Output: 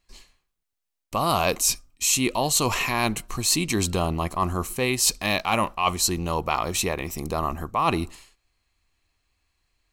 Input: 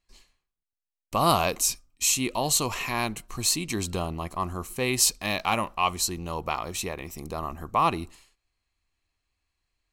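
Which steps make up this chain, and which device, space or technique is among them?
compression on the reversed sound (reverse; compressor 10:1, threshold -25 dBFS, peak gain reduction 10 dB; reverse); gain +7 dB

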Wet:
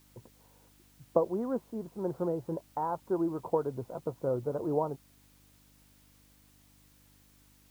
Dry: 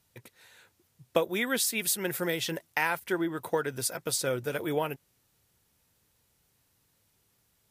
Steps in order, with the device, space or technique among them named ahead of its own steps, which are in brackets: steep low-pass 1100 Hz 48 dB/oct; video cassette with head-switching buzz (buzz 50 Hz, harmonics 6, -65 dBFS -3 dB/oct; white noise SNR 30 dB)

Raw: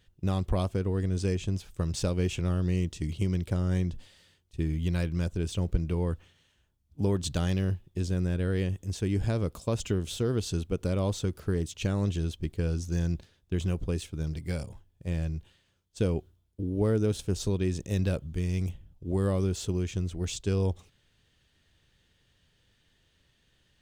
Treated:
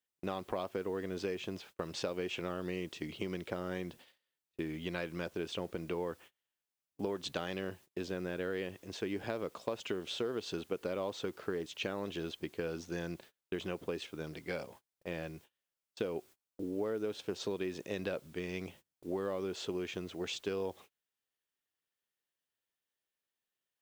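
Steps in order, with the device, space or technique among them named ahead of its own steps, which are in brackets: baby monitor (BPF 400–3300 Hz; compressor, threshold -36 dBFS, peak gain reduction 9 dB; white noise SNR 27 dB; gate -58 dBFS, range -27 dB); gain +3.5 dB

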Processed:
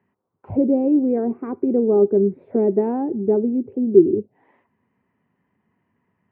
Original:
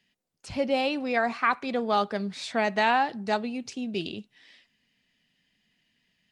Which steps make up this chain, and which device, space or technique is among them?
envelope filter bass rig (envelope low-pass 360–1100 Hz down, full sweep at -30 dBFS; speaker cabinet 75–2300 Hz, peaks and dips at 100 Hz +9 dB, 390 Hz +7 dB, 680 Hz -4 dB, 1200 Hz -4 dB, 1700 Hz -4 dB); gain +6.5 dB

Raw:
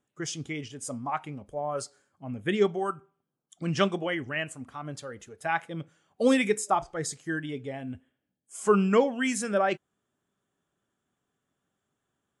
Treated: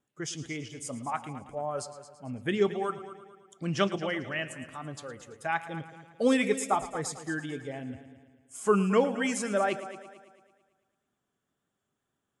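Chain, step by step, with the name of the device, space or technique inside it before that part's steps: multi-head tape echo (multi-head echo 0.111 s, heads first and second, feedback 46%, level -16 dB; wow and flutter 20 cents); gain -2 dB

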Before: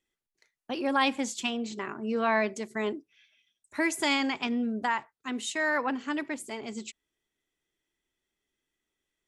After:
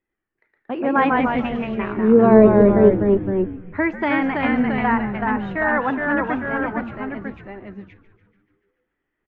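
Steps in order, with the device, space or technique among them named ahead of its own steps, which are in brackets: 1.96–2.91 graphic EQ 125/250/500/1000/2000/4000/8000 Hz -6/+11/+9/-3/-10/+6/-11 dB; echoes that change speed 89 ms, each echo -1 st, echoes 2; frequency-shifting echo 0.145 s, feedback 63%, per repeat -100 Hz, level -15 dB; action camera in a waterproof case (LPF 2000 Hz 24 dB/oct; AGC gain up to 4 dB; gain +3.5 dB; AAC 64 kbps 44100 Hz)

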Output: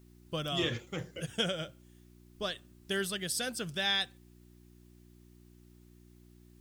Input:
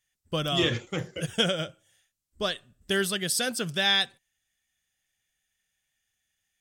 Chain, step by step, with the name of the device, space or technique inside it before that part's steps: video cassette with head-switching buzz (buzz 60 Hz, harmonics 6, -51 dBFS -3 dB/oct; white noise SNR 34 dB); gain -7 dB

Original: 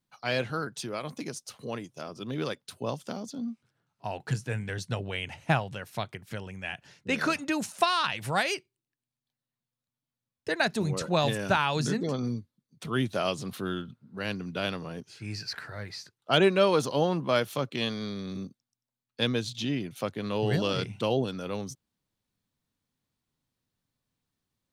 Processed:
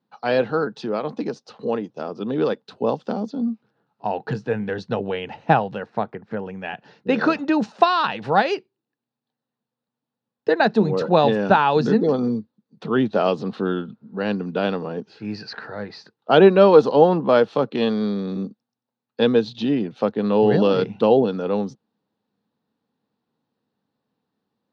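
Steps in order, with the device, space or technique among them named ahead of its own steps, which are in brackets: kitchen radio (speaker cabinet 170–4000 Hz, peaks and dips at 210 Hz +8 dB, 300 Hz +3 dB, 460 Hz +9 dB, 820 Hz +7 dB, 2200 Hz -9 dB, 3200 Hz -6 dB); 5.86–6.46 band shelf 5800 Hz -11 dB 2.5 oct; gain +6.5 dB

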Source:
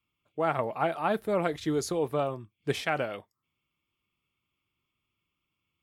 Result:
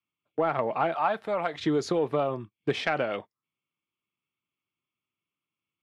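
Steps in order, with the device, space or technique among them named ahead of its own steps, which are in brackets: gate -46 dBFS, range -15 dB; AM radio (BPF 140–4000 Hz; compressor 4:1, threshold -30 dBFS, peak gain reduction 7.5 dB; soft clip -20 dBFS, distortion -24 dB); 0.94–1.57 resonant low shelf 540 Hz -8 dB, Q 1.5; gain +8 dB

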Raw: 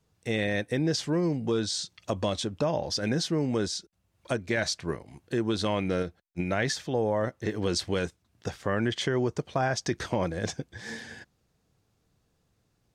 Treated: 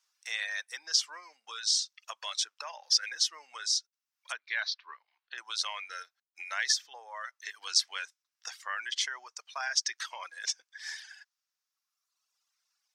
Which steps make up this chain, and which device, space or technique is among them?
reverb removal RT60 1.7 s; headphones lying on a table (HPF 1100 Hz 24 dB/oct; bell 5500 Hz +9 dB 0.52 oct); 4.32–5.38 elliptic band-pass 250–3900 Hz, stop band 40 dB

